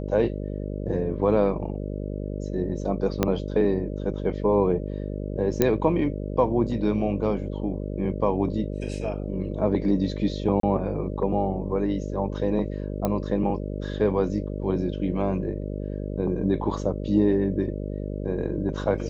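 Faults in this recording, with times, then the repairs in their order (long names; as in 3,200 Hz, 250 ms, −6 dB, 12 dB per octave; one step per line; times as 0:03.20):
mains buzz 50 Hz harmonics 12 −31 dBFS
0:03.23: click −7 dBFS
0:05.62: click −6 dBFS
0:10.60–0:10.63: drop-out 33 ms
0:13.05: click −12 dBFS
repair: click removal
hum removal 50 Hz, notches 12
repair the gap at 0:10.60, 33 ms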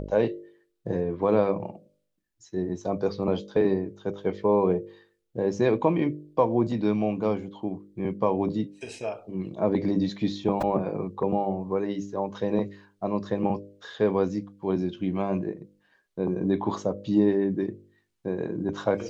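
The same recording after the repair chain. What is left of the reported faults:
0:03.23: click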